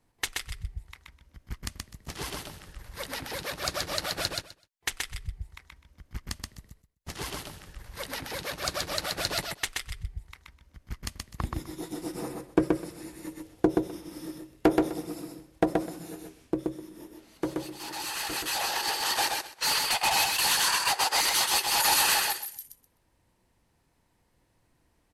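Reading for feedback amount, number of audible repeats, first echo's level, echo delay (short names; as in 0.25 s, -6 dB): 17%, 3, -3.0 dB, 0.127 s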